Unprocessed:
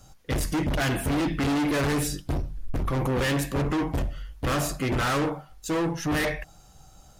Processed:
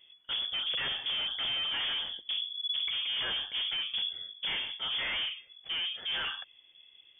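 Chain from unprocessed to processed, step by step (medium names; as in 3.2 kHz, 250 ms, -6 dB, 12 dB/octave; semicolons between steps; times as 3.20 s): tracing distortion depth 0.043 ms; frequency inversion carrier 3.4 kHz; trim -8.5 dB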